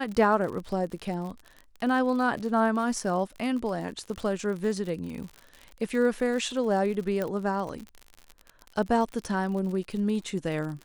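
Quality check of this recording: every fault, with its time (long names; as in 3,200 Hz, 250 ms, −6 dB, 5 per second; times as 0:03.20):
surface crackle 56 per second −34 dBFS
0:07.22: click −17 dBFS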